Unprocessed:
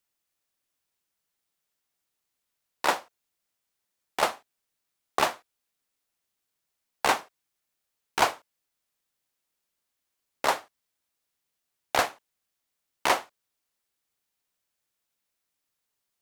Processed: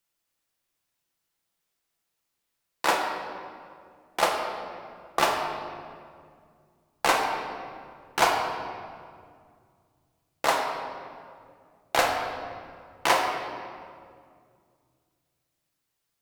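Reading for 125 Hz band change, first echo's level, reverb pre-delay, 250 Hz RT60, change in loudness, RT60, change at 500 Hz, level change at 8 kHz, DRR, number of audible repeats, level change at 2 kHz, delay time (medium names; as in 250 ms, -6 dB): +4.0 dB, no echo, 6 ms, 2.9 s, +0.5 dB, 2.1 s, +3.5 dB, +1.5 dB, 0.0 dB, no echo, +2.5 dB, no echo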